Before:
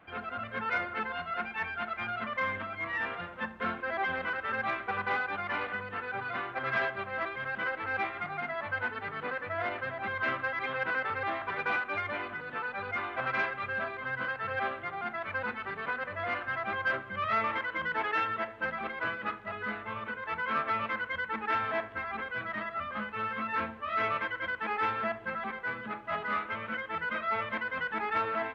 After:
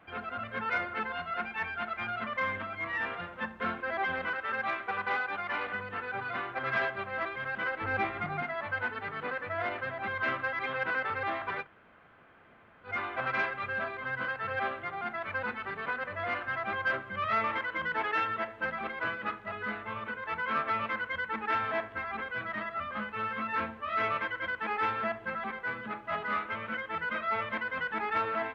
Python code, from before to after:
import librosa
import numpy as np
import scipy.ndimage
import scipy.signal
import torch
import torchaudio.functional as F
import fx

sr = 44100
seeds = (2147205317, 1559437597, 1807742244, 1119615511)

y = fx.low_shelf(x, sr, hz=210.0, db=-8.5, at=(4.34, 5.65))
y = fx.low_shelf(y, sr, hz=390.0, db=9.5, at=(7.81, 8.43))
y = fx.edit(y, sr, fx.room_tone_fill(start_s=11.62, length_s=1.26, crossfade_s=0.1), tone=tone)